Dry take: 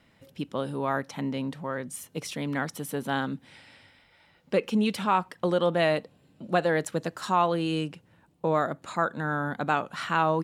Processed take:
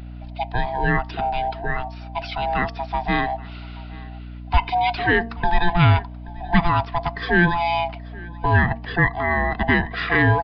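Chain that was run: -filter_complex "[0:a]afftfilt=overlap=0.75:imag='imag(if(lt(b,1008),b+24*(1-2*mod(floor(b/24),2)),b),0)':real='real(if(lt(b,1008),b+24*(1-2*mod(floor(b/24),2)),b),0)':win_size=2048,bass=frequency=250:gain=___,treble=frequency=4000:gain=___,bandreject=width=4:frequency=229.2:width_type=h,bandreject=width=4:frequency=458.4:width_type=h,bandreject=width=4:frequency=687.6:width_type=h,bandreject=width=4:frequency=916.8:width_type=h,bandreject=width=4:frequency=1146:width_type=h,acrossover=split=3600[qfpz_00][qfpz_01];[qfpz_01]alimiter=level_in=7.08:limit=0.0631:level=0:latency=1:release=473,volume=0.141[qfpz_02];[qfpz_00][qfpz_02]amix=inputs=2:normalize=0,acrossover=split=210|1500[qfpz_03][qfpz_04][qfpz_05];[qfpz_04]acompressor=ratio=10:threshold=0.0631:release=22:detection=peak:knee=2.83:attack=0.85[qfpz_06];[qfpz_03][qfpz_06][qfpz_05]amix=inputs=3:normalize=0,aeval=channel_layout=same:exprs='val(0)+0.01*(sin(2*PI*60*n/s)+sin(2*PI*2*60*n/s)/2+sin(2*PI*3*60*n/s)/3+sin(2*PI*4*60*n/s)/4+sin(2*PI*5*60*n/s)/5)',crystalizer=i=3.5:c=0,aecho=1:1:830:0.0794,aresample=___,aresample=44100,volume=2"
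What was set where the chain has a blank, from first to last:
5, -13, 11025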